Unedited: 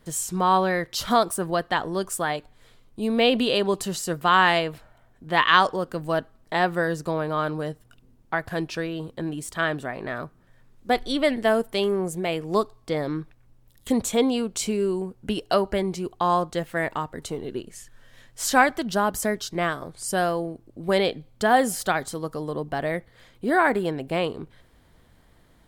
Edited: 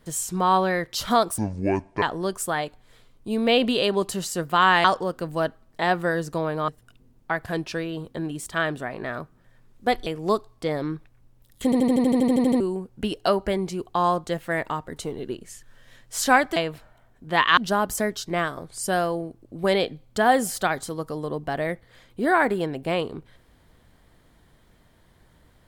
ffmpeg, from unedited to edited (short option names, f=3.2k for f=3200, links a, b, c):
-filter_complex "[0:a]asplit=20[a][b][c][d][e][f][g][h][i][j][k][l][m][n][o][p][q][r][s][t];[a]atrim=end=1.384[u];[b]atrim=start=1.38:end=1.74,asetpts=PTS-STARTPTS,asetrate=24696,aresample=44100[v];[c]atrim=start=1.736:end=4.562[w];[d]atrim=start=5.568:end=7.412[x];[e]atrim=start=7.708:end=11.092[y];[f]atrim=start=12.318:end=13.982[z];[g]atrim=start=13.898:end=13.982[aa];[h]atrim=start=13.898:end=13.982[ab];[i]atrim=start=13.898:end=13.982[ac];[j]atrim=start=13.898:end=13.982[ad];[k]atrim=start=13.898:end=13.982[ae];[l]atrim=start=13.898:end=13.982[af];[m]atrim=start=13.898:end=13.982[ag];[n]atrim=start=13.898:end=13.982[ah];[o]atrim=start=13.898:end=13.982[ai];[p]atrim=start=13.898:end=13.982[aj];[q]atrim=start=13.898:end=13.982[ak];[r]atrim=start=14.858:end=18.822[al];[s]atrim=start=4.558:end=5.572[am];[t]atrim=start=18.818[an];[u][v]acrossfade=d=0.004:c1=hsin:c2=hsin[ao];[ao][w]acrossfade=d=0.004:c1=hsin:c2=hsin[ap];[ap][x]acrossfade=d=0.004:c1=hsin:c2=hsin[aq];[aq][y]acrossfade=d=0.004:c1=hsin:c2=hsin[ar];[ar][z]acrossfade=d=0.004:c1=hsin:c2=hsin[as];[as][aa]acrossfade=d=0.004:c1=hsin:c2=hsin[at];[at][ab]acrossfade=d=0.004:c1=hsin:c2=hsin[au];[au][ac]acrossfade=d=0.004:c1=hsin:c2=hsin[av];[av][ad]acrossfade=d=0.004:c1=hsin:c2=hsin[aw];[aw][ae]acrossfade=d=0.004:c1=hsin:c2=hsin[ax];[ax][af]acrossfade=d=0.004:c1=hsin:c2=hsin[ay];[ay][ag]acrossfade=d=0.004:c1=hsin:c2=hsin[az];[az][ah]acrossfade=d=0.004:c1=hsin:c2=hsin[ba];[ba][ai]acrossfade=d=0.004:c1=hsin:c2=hsin[bb];[bb][aj]acrossfade=d=0.004:c1=hsin:c2=hsin[bc];[bc][ak]acrossfade=d=0.004:c1=hsin:c2=hsin[bd];[bd][al]acrossfade=d=0.004:c1=hsin:c2=hsin[be];[be][am]acrossfade=d=0.004:c1=hsin:c2=hsin[bf];[bf][an]acrossfade=d=0.004:c1=hsin:c2=hsin"